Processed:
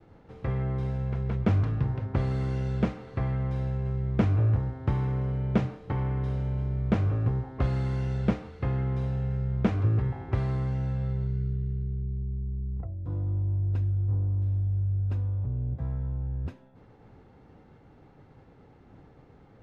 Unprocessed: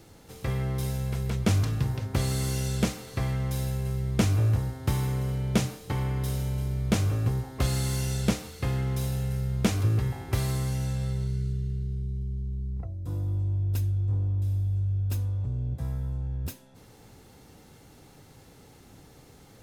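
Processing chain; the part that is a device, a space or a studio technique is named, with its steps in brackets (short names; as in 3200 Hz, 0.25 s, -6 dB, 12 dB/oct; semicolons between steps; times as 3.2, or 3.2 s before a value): hearing-loss simulation (LPF 1700 Hz 12 dB/oct; expander -51 dBFS)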